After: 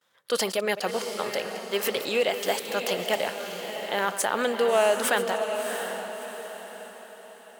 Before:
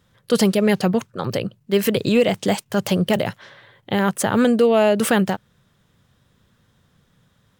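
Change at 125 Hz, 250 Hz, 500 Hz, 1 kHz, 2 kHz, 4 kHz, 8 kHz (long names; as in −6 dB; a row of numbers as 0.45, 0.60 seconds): below −20 dB, −17.5 dB, −5.5 dB, −2.5 dB, −1.5 dB, −1.5 dB, −1.5 dB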